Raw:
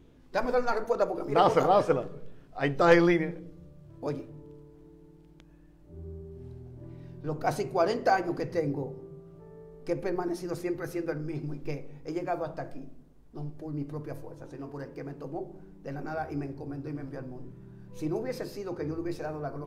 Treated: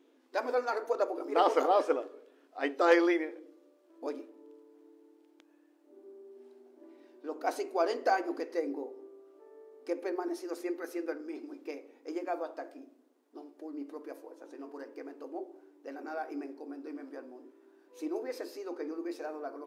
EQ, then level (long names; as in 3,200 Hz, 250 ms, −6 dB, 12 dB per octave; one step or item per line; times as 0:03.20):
linear-phase brick-wall high-pass 250 Hz
−3.5 dB